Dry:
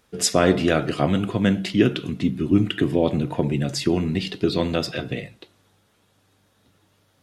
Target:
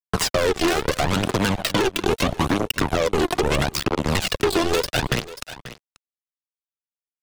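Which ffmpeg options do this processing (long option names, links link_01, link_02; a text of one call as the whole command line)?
ffmpeg -i in.wav -filter_complex "[0:a]asplit=2[link_01][link_02];[link_02]adelay=309,volume=-25dB,highshelf=frequency=4000:gain=-6.95[link_03];[link_01][link_03]amix=inputs=2:normalize=0,acompressor=threshold=-22dB:ratio=20,asplit=3[link_04][link_05][link_06];[link_04]afade=type=out:start_time=3.64:duration=0.02[link_07];[link_05]tremolo=f=72:d=0.947,afade=type=in:start_time=3.64:duration=0.02,afade=type=out:start_time=4.1:duration=0.02[link_08];[link_06]afade=type=in:start_time=4.1:duration=0.02[link_09];[link_07][link_08][link_09]amix=inputs=3:normalize=0,acrusher=bits=3:mix=0:aa=0.5,aphaser=in_gain=1:out_gain=1:delay=3:decay=0.5:speed=0.76:type=triangular,apsyclip=30dB,asplit=2[link_10][link_11];[link_11]aecho=0:1:536:0.0668[link_12];[link_10][link_12]amix=inputs=2:normalize=0,acrossover=split=390|4600[link_13][link_14][link_15];[link_13]acompressor=threshold=-17dB:ratio=4[link_16];[link_14]acompressor=threshold=-19dB:ratio=4[link_17];[link_15]acompressor=threshold=-27dB:ratio=4[link_18];[link_16][link_17][link_18]amix=inputs=3:normalize=0,volume=-5dB" out.wav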